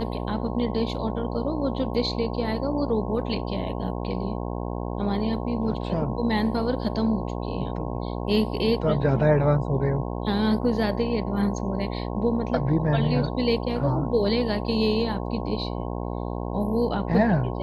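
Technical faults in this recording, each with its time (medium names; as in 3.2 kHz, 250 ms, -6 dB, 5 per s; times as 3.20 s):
buzz 60 Hz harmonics 18 -30 dBFS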